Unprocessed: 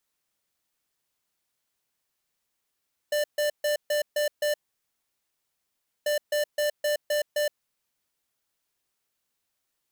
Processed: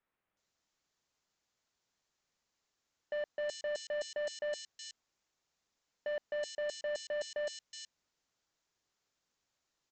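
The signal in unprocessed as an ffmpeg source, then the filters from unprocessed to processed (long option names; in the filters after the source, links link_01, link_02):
-f lavfi -i "aevalsrc='0.0562*(2*lt(mod(593*t,1),0.5)-1)*clip(min(mod(mod(t,2.94),0.26),0.12-mod(mod(t,2.94),0.26))/0.005,0,1)*lt(mod(t,2.94),1.56)':duration=5.88:sample_rate=44100"
-filter_complex "[0:a]aresample=16000,asoftclip=type=hard:threshold=-34.5dB,aresample=44100,acrossover=split=2700[link_01][link_02];[link_02]adelay=370[link_03];[link_01][link_03]amix=inputs=2:normalize=0"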